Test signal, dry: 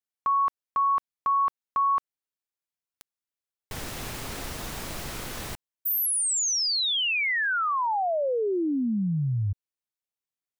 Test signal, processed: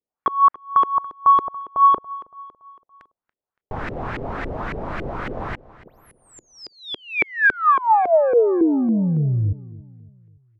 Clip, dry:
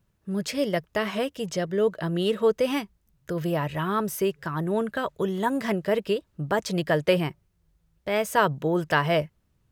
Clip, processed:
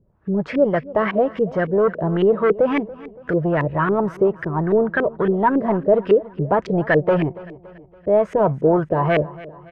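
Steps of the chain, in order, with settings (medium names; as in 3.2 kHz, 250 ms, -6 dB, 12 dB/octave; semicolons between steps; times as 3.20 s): saturation -21 dBFS; feedback delay 283 ms, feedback 48%, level -19 dB; LFO low-pass saw up 3.6 Hz 380–2100 Hz; trim +7.5 dB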